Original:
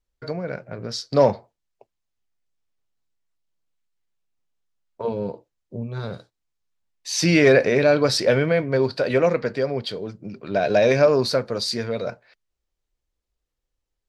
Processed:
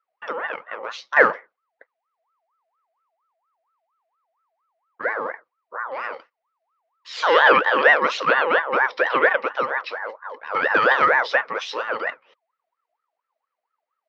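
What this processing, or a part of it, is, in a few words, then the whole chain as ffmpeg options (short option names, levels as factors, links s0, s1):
voice changer toy: -af "aeval=exprs='val(0)*sin(2*PI*990*n/s+990*0.35/4.3*sin(2*PI*4.3*n/s))':c=same,highpass=470,equalizer=f=500:t=q:w=4:g=9,equalizer=f=760:t=q:w=4:g=-5,equalizer=f=2000:t=q:w=4:g=6,equalizer=f=3500:t=q:w=4:g=-5,lowpass=f=4000:w=0.5412,lowpass=f=4000:w=1.3066,volume=1.41"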